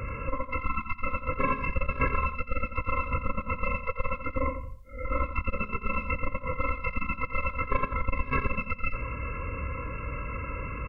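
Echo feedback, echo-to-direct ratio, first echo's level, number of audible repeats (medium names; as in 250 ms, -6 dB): 26%, -9.5 dB, -10.0 dB, 3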